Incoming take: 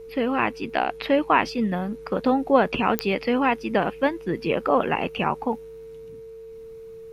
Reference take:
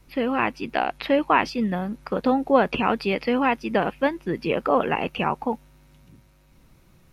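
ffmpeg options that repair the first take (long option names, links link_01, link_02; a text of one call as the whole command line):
ffmpeg -i in.wav -af "adeclick=threshold=4,bandreject=frequency=450:width=30" out.wav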